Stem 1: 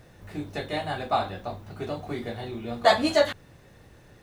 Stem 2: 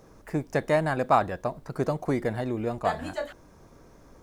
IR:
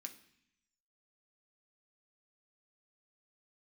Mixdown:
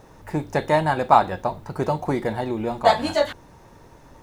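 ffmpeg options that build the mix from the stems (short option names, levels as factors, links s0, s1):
-filter_complex "[0:a]volume=0.841[s0];[1:a]equalizer=f=890:t=o:w=0.25:g=11.5,volume=-1,volume=1.33[s1];[s0][s1]amix=inputs=2:normalize=0"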